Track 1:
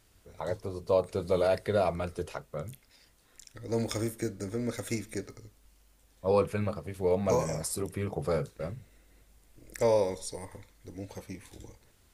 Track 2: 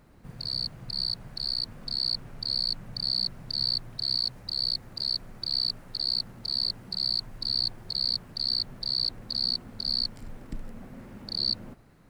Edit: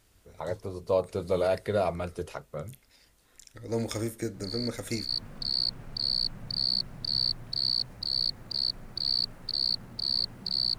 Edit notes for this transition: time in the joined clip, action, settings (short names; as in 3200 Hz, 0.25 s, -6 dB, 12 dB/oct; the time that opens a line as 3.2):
track 1
4.34 add track 2 from 0.8 s 0.75 s -7.5 dB
5.09 switch to track 2 from 1.55 s